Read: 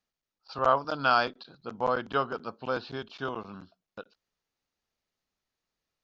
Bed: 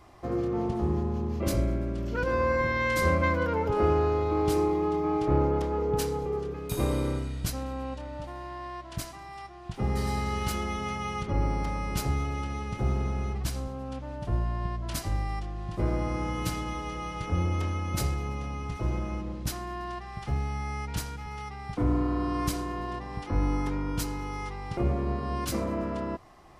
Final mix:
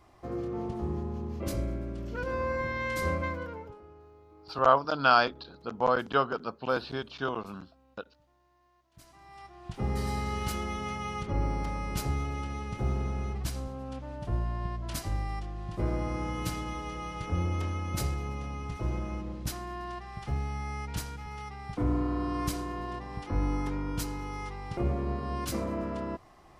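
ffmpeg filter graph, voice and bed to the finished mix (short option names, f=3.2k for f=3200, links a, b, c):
-filter_complex "[0:a]adelay=4000,volume=2dB[a];[1:a]volume=21dB,afade=t=out:st=3.11:d=0.7:silence=0.0668344,afade=t=in:st=8.93:d=0.76:silence=0.0473151[b];[a][b]amix=inputs=2:normalize=0"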